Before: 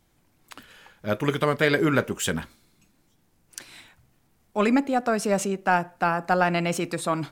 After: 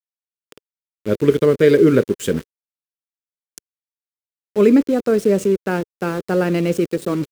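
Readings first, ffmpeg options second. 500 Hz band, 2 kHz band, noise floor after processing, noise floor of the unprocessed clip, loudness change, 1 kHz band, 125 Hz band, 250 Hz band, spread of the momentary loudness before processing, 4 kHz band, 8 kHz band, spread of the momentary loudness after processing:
+10.0 dB, -2.5 dB, under -85 dBFS, -66 dBFS, +7.0 dB, -6.0 dB, +6.0 dB, +8.5 dB, 13 LU, -1.5 dB, -2.0 dB, 11 LU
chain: -af "aeval=exprs='val(0)*gte(abs(val(0)),0.0316)':c=same,highpass=f=82:p=1,lowshelf=f=580:t=q:w=3:g=8.5,volume=-1.5dB"

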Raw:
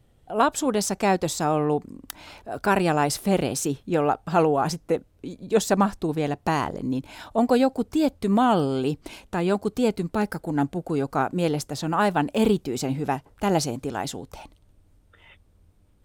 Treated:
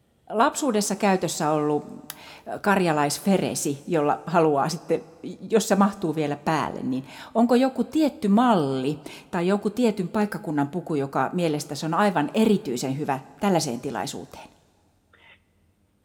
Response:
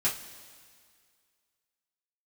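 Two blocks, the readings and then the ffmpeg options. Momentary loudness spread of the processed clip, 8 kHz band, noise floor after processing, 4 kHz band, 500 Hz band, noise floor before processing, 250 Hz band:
10 LU, +0.5 dB, -64 dBFS, +0.5 dB, +0.5 dB, -60 dBFS, +1.0 dB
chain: -filter_complex "[0:a]highpass=99,asplit=2[a][b];[1:a]atrim=start_sample=2205[c];[b][c]afir=irnorm=-1:irlink=0,volume=-16dB[d];[a][d]amix=inputs=2:normalize=0,volume=-1dB"

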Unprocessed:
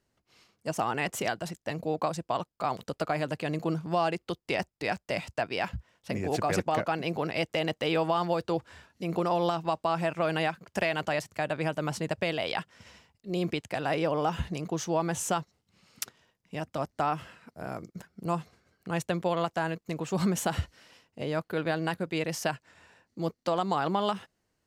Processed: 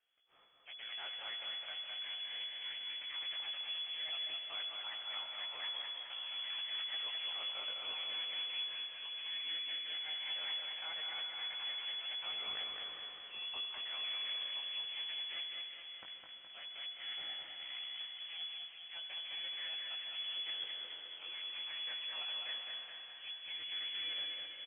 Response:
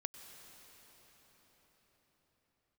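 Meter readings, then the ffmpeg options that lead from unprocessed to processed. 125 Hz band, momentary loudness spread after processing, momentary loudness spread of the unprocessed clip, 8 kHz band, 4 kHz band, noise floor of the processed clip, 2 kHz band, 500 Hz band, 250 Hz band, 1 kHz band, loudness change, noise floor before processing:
under -40 dB, 7 LU, 11 LU, under -40 dB, +5.0 dB, -53 dBFS, -10.0 dB, -30.5 dB, under -35 dB, -23.0 dB, -8.5 dB, -80 dBFS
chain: -filter_complex "[0:a]areverse,acompressor=threshold=-40dB:ratio=6,areverse,flanger=delay=16:depth=6.2:speed=0.17,acrossover=split=140|1200[a][b][c];[b]aeval=exprs='abs(val(0))':c=same[d];[a][d][c]amix=inputs=3:normalize=0,aecho=1:1:209|418|627|836|1045|1254|1463|1672:0.631|0.353|0.198|0.111|0.0621|0.0347|0.0195|0.0109[e];[1:a]atrim=start_sample=2205,asetrate=52920,aresample=44100[f];[e][f]afir=irnorm=-1:irlink=0,lowpass=f=2.9k:t=q:w=0.5098,lowpass=f=2.9k:t=q:w=0.6013,lowpass=f=2.9k:t=q:w=0.9,lowpass=f=2.9k:t=q:w=2.563,afreqshift=-3400,volume=4.5dB"

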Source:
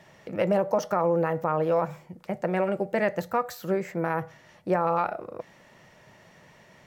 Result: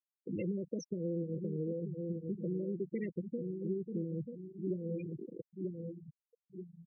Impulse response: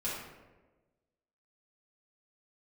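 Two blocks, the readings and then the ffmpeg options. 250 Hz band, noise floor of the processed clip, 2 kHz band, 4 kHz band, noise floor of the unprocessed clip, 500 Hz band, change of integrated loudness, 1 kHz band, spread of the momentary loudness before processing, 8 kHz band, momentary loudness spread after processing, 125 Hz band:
-5.0 dB, under -85 dBFS, -24.5 dB, under -15 dB, -56 dBFS, -13.5 dB, -12.0 dB, under -40 dB, 15 LU, under -10 dB, 9 LU, -4.5 dB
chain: -filter_complex "[0:a]asuperstop=centerf=980:order=8:qfactor=0.54,asplit=2[a][b];[b]adelay=938,lowpass=f=870:p=1,volume=-8dB,asplit=2[c][d];[d]adelay=938,lowpass=f=870:p=1,volume=0.38,asplit=2[e][f];[f]adelay=938,lowpass=f=870:p=1,volume=0.38,asplit=2[g][h];[h]adelay=938,lowpass=f=870:p=1,volume=0.38[i];[c][e][g][i]amix=inputs=4:normalize=0[j];[a][j]amix=inputs=2:normalize=0,acompressor=threshold=-34dB:ratio=4,afftfilt=real='re*gte(hypot(re,im),0.0316)':imag='im*gte(hypot(re,im),0.0316)':win_size=1024:overlap=0.75"

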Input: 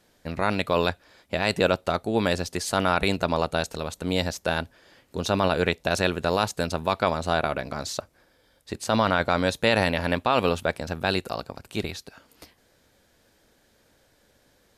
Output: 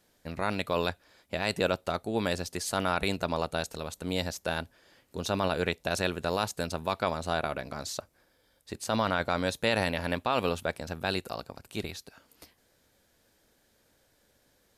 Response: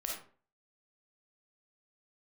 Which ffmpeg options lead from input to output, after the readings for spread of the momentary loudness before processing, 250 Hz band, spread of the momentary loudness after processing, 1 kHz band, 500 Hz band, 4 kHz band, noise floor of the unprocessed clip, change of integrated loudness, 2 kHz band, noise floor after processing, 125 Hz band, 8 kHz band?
11 LU, -6.0 dB, 11 LU, -6.0 dB, -6.0 dB, -5.0 dB, -64 dBFS, -6.0 dB, -5.5 dB, -69 dBFS, -6.0 dB, -3.0 dB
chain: -af "highshelf=f=8.1k:g=6.5,volume=-6dB"

